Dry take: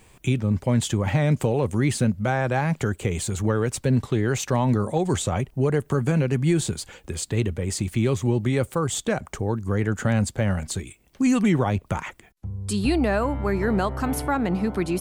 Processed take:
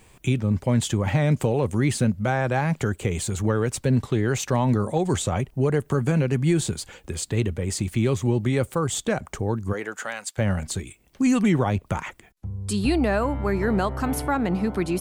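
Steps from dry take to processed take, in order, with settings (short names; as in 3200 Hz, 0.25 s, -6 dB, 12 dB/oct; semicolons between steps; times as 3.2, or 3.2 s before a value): 9.72–10.37 HPF 360 Hz -> 1500 Hz 12 dB/oct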